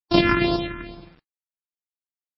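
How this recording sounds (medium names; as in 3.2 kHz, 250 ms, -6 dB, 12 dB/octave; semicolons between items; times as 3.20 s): a buzz of ramps at a fixed pitch in blocks of 128 samples; phasing stages 4, 2.3 Hz, lowest notch 640–2000 Hz; a quantiser's noise floor 10-bit, dither none; MP3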